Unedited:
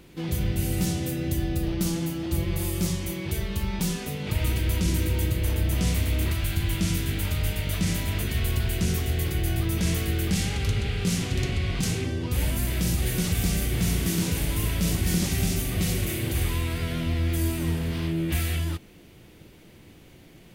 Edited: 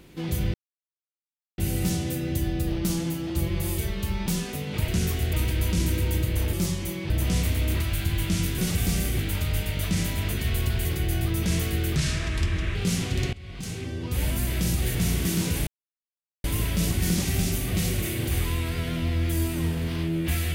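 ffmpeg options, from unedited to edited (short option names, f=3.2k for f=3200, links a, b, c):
-filter_complex "[0:a]asplit=15[a][b][c][d][e][f][g][h][i][j][k][l][m][n][o];[a]atrim=end=0.54,asetpts=PTS-STARTPTS,afade=t=out:st=0.536:d=0.004:c=hsin,apad=pad_dur=1.04[p];[b]atrim=start=0.54:end=2.742,asetpts=PTS-STARTPTS,afade=t=in:d=0.004:c=hsin[q];[c]atrim=start=3.308:end=4.412[r];[d]atrim=start=8.748:end=9.202[s];[e]atrim=start=4.408:end=5.612[t];[f]atrim=start=2.738:end=3.312[u];[g]atrim=start=5.608:end=7.092[v];[h]atrim=start=13.148:end=13.762[w];[i]atrim=start=7.088:end=8.752[x];[j]atrim=start=9.198:end=10.314[y];[k]atrim=start=10.31:end=10.95,asetpts=PTS-STARTPTS,asetrate=35721,aresample=44100,atrim=end_sample=34844,asetpts=PTS-STARTPTS[z];[l]atrim=start=10.946:end=11.53,asetpts=PTS-STARTPTS,afade=t=out:st=0.58:d=0.004:c=hsin:silence=0.0944061[aa];[m]atrim=start=11.53:end=13.152,asetpts=PTS-STARTPTS,afade=t=in:d=0.98:silence=0.0944061[ab];[n]atrim=start=13.758:end=14.48,asetpts=PTS-STARTPTS,afade=t=out:st=0.718:d=0.004:c=hsin,apad=pad_dur=0.77[ac];[o]atrim=start=14.48,asetpts=PTS-STARTPTS,afade=t=in:d=0.004:c=hsin[ad];[p][q]concat=n=2:v=0:a=1[ae];[ae][r]acrossfade=d=0.004:c1=hsin:c2=hsin[af];[af][s]acrossfade=d=0.004:c1=hsin:c2=hsin[ag];[ag][t]acrossfade=d=0.004:c1=hsin:c2=hsin[ah];[ah][u]acrossfade=d=0.004:c1=hsin:c2=hsin[ai];[ai][v]acrossfade=d=0.004:c1=hsin:c2=hsin[aj];[aj][w]acrossfade=d=0.004:c1=hsin:c2=hsin[ak];[ak][x]acrossfade=d=0.004:c1=hsin:c2=hsin[al];[al][y]acrossfade=d=0.004:c1=hsin:c2=hsin[am];[am][z]acrossfade=d=0.004:c1=hsin:c2=hsin[an];[aa][ab]concat=n=2:v=0:a=1[ao];[an][ao]acrossfade=d=0.004:c1=hsin:c2=hsin[ap];[ac][ad]concat=n=2:v=0:a=1[aq];[ap][aq]acrossfade=d=0.004:c1=hsin:c2=hsin"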